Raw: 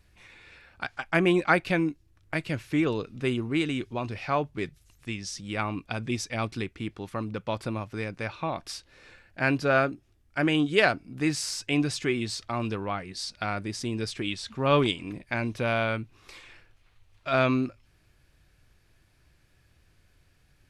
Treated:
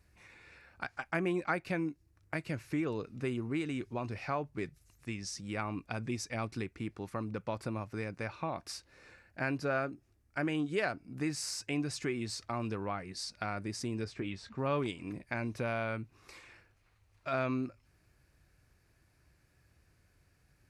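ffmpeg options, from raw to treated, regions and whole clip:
ffmpeg -i in.wav -filter_complex "[0:a]asettb=1/sr,asplit=3[link_01][link_02][link_03];[link_01]atrim=end=14.044[link_04];[link_02]atrim=start=14.04:end=14.58,asetpts=PTS-STARTPTS,afade=type=in:duration=0.004:curve=qsin,afade=type=out:start_time=0.536:duration=0.004:curve=qsin,aemphasis=mode=reproduction:type=75kf,asplit=2[link_05][link_06];[link_06]adelay=21,volume=-11.5dB[link_07];[link_05][link_07]amix=inputs=2:normalize=0,atrim=end_sample=23814[link_08];[link_03]atrim=start=14.576[link_09];[link_04][link_08]acrossfade=duration=0.004:curve1=hsin:curve2=qsin[link_10];[link_10][link_09]acrossfade=duration=0.004:curve1=qsin:curve2=hsin,highpass=41,acompressor=threshold=-30dB:ratio=2,equalizer=frequency=3300:width_type=o:width=0.54:gain=-8.5,volume=-3.5dB" out.wav

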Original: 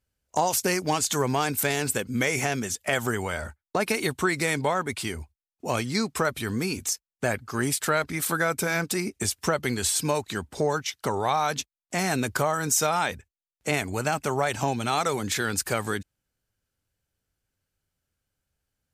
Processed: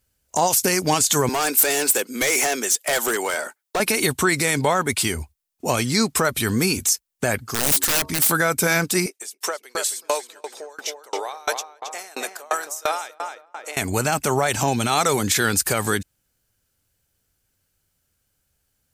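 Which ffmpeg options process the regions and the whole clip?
ffmpeg -i in.wav -filter_complex "[0:a]asettb=1/sr,asplit=3[link_01][link_02][link_03];[link_01]atrim=end=1.294[link_04];[link_02]atrim=start=1.29:end=3.8,asetpts=PTS-STARTPTS,afade=type=in:duration=0.004:curve=qsin,afade=type=out:start_time=2.506:duration=0.004:curve=qsin,highpass=frequency=310:width=0.5412,highpass=frequency=310:width=1.3066,volume=25dB,asoftclip=hard,volume=-25dB[link_05];[link_03]atrim=start=3.796[link_06];[link_04][link_05]acrossfade=duration=0.004:curve1=hsin:curve2=qsin[link_07];[link_07][link_06]acrossfade=duration=0.004:curve1=qsin:curve2=hsin,asettb=1/sr,asplit=3[link_08][link_09][link_10];[link_08]atrim=end=7.444[link_11];[link_09]atrim=start=7.44:end=8.31,asetpts=PTS-STARTPTS,afade=type=in:duration=0.004:curve=qsin,afade=type=out:start_time=0.866:duration=0.004:curve=qsin,equalizer=frequency=1300:width=0.46:gain=-4,bandreject=frequency=91.82:width_type=h:width=4,bandreject=frequency=183.64:width_type=h:width=4,bandreject=frequency=275.46:width_type=h:width=4,bandreject=frequency=367.28:width_type=h:width=4,bandreject=frequency=459.1:width_type=h:width=4,bandreject=frequency=550.92:width_type=h:width=4,bandreject=frequency=642.74:width_type=h:width=4,bandreject=frequency=734.56:width_type=h:width=4,bandreject=frequency=826.38:width_type=h:width=4,bandreject=frequency=918.2:width_type=h:width=4,bandreject=frequency=1010.02:width_type=h:width=4,bandreject=frequency=1101.84:width_type=h:width=4,bandreject=frequency=1193.66:width_type=h:width=4,aeval=exprs='(mod(13.3*val(0)+1,2)-1)/13.3':channel_layout=same[link_12];[link_10]atrim=start=8.306[link_13];[link_11][link_12]acrossfade=duration=0.004:curve1=hsin:curve2=qsin[link_14];[link_14][link_13]acrossfade=duration=0.004:curve1=qsin:curve2=hsin,asettb=1/sr,asplit=3[link_15][link_16][link_17];[link_15]atrim=end=9.064[link_18];[link_16]atrim=start=9.06:end=13.77,asetpts=PTS-STARTPTS,afade=type=in:duration=0.004:curve=qsin,afade=type=out:start_time=4.706:duration=0.004:curve=qsin,highpass=frequency=410:width=0.5412,highpass=frequency=410:width=1.3066,asplit=2[link_19][link_20];[link_20]adelay=270,lowpass=frequency=2400:poles=1,volume=-7dB,asplit=2[link_21][link_22];[link_22]adelay=270,lowpass=frequency=2400:poles=1,volume=0.54,asplit=2[link_23][link_24];[link_24]adelay=270,lowpass=frequency=2400:poles=1,volume=0.54,asplit=2[link_25][link_26];[link_26]adelay=270,lowpass=frequency=2400:poles=1,volume=0.54,asplit=2[link_27][link_28];[link_28]adelay=270,lowpass=frequency=2400:poles=1,volume=0.54,asplit=2[link_29][link_30];[link_30]adelay=270,lowpass=frequency=2400:poles=1,volume=0.54,asplit=2[link_31][link_32];[link_32]adelay=270,lowpass=frequency=2400:poles=1,volume=0.54[link_33];[link_19][link_21][link_23][link_25][link_27][link_29][link_31][link_33]amix=inputs=8:normalize=0,atrim=end_sample=207711,aeval=exprs='val(0)*pow(10,-31*if(lt(mod(2.9*n/s,1),2*abs(2.9)/1000),1-mod(2.9*n/s,1)/(2*abs(2.9)/1000),(mod(2.9*n/s,1)-2*abs(2.9)/1000)/(1-2*abs(2.9)/1000))/20)':channel_layout=same[link_34];[link_17]atrim=start=13.766[link_35];[link_18][link_34]acrossfade=duration=0.004:curve1=hsin:curve2=qsin[link_36];[link_36][link_35]acrossfade=duration=0.004:curve1=qsin:curve2=hsin,highshelf=frequency=5700:gain=9,alimiter=level_in=14dB:limit=-1dB:release=50:level=0:latency=1,volume=-7dB" out.wav

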